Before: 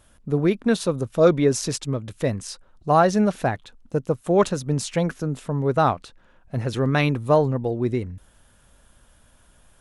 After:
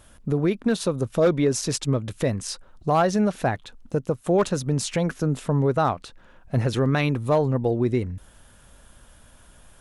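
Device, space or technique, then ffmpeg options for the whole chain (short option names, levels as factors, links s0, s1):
clipper into limiter: -af "asoftclip=type=hard:threshold=0.335,alimiter=limit=0.141:level=0:latency=1:release=321,volume=1.68"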